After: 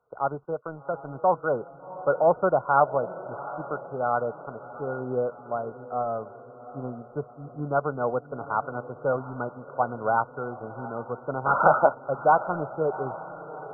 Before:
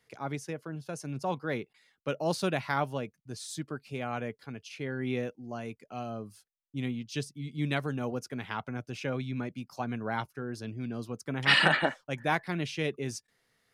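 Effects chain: resonant low shelf 400 Hz -9.5 dB, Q 1.5; waveshaping leveller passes 1; brick-wall FIR low-pass 1.5 kHz; echo that smears into a reverb 746 ms, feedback 52%, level -14.5 dB; trim +6 dB

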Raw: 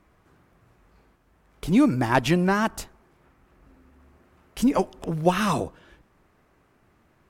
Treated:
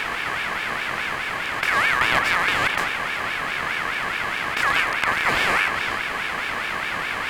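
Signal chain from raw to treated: spectral levelling over time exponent 0.2; ring modulator with a swept carrier 1.7 kHz, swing 20%, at 4.8 Hz; trim -4 dB

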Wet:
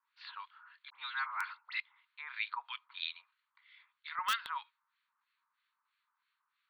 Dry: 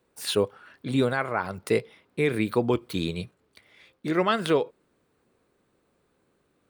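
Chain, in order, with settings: Chebyshev band-pass 930–4400 Hz, order 5; 0.90–1.80 s: phase dispersion highs, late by 64 ms, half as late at 1.9 kHz; in parallel at -8 dB: integer overflow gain 17.5 dB; on the sum: harmonic tremolo 3.1 Hz, depth 100%, crossover 1.4 kHz; trim -3 dB

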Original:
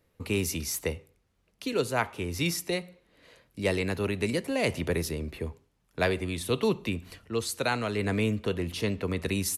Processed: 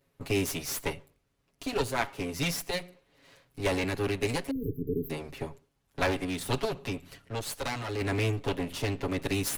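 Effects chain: comb filter that takes the minimum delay 7.2 ms; 4.51–5.10 s: brick-wall FIR band-stop 490–12000 Hz; 6.65–8.01 s: valve stage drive 26 dB, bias 0.4

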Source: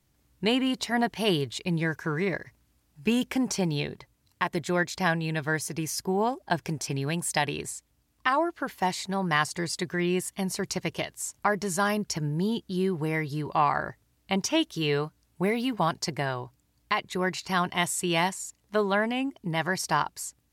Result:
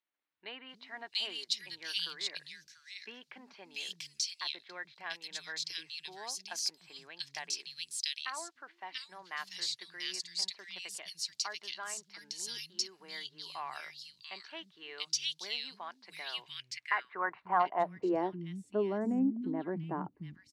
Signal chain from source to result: three bands offset in time mids, lows, highs 300/690 ms, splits 200/2200 Hz; wow and flutter 23 cents; band-pass sweep 4.4 kHz -> 270 Hz, 16.15–18.52 s; trim +3.5 dB

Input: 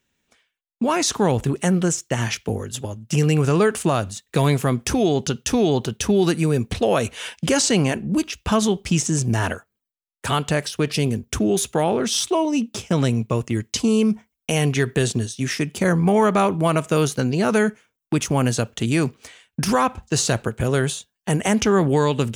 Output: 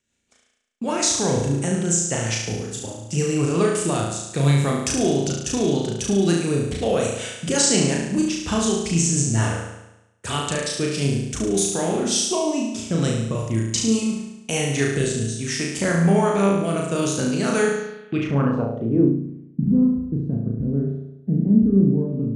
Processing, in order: rotary cabinet horn 5.5 Hz, later 0.6 Hz, at 14.25 s; flutter echo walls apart 6.1 m, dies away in 0.91 s; low-pass sweep 8.1 kHz -> 240 Hz, 17.72–19.20 s; trim -3.5 dB

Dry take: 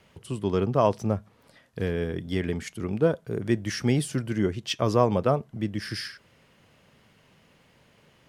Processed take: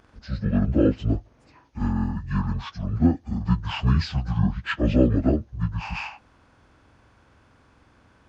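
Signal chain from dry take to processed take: frequency-domain pitch shifter -11.5 st; trim +4 dB

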